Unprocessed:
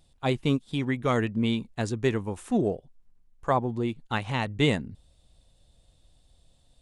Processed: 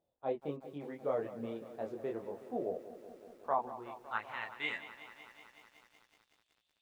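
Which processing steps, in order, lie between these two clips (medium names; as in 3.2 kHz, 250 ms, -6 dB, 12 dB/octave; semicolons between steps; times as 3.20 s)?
band-pass sweep 570 Hz -> 2.5 kHz, 3.01–5.05 s; chorus voices 2, 0.36 Hz, delay 24 ms, depth 3.3 ms; bit-crushed delay 186 ms, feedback 80%, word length 10-bit, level -14 dB; trim -1 dB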